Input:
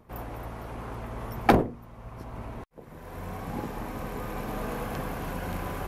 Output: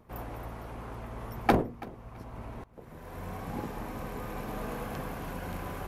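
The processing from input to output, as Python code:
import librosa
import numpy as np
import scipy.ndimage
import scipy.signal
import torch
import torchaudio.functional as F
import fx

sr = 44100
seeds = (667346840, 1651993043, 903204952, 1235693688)

y = fx.echo_feedback(x, sr, ms=331, feedback_pct=25, wet_db=-19.5)
y = fx.rider(y, sr, range_db=4, speed_s=2.0)
y = F.gain(torch.from_numpy(y), -6.0).numpy()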